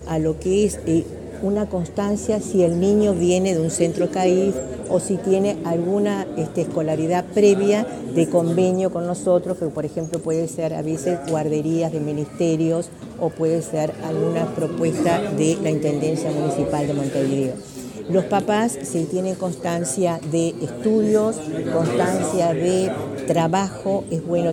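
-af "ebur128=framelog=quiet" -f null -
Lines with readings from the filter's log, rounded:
Integrated loudness:
  I:         -21.1 LUFS
  Threshold: -31.2 LUFS
Loudness range:
  LRA:         3.1 LU
  Threshold: -41.1 LUFS
  LRA low:   -22.7 LUFS
  LRA high:  -19.5 LUFS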